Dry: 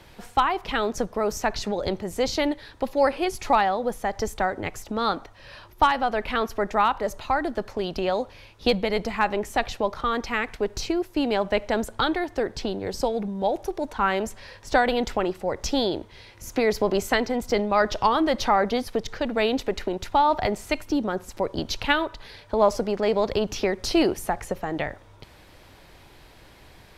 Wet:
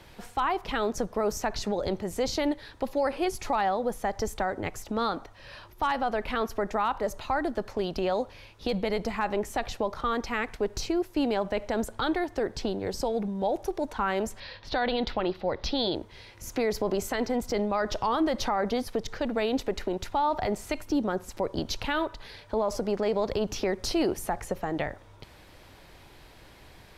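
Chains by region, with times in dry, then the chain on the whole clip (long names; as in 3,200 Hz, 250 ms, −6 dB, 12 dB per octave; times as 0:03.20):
0:14.40–0:15.95: high shelf with overshoot 5,700 Hz −13 dB, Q 3 + notch filter 410 Hz
whole clip: dynamic equaliser 2,700 Hz, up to −3 dB, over −39 dBFS, Q 0.82; brickwall limiter −16.5 dBFS; level −1.5 dB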